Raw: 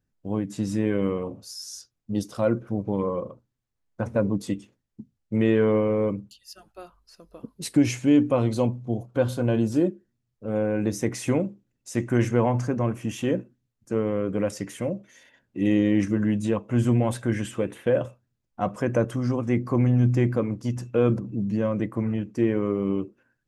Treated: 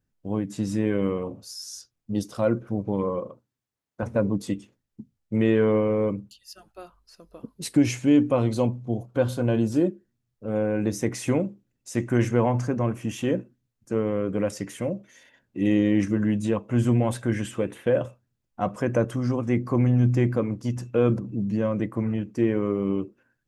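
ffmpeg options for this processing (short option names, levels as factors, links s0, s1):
-filter_complex "[0:a]asettb=1/sr,asplit=3[s0][s1][s2];[s0]atrim=end=3.194[s3];[s1]atrim=start=3.19:end=4.03,asetpts=PTS-STARTPTS,afade=t=in:d=0.004:c=qsin,afade=t=out:st=0.836:d=0.004:c=qsin,highpass=f=180:p=1[s4];[s2]atrim=start=4.026[s5];[s3][s4]acrossfade=d=0.004:c1=hsin:c2=qsin[s6];[s6][s5]acrossfade=d=0.004:c1=qsin:c2=hsin"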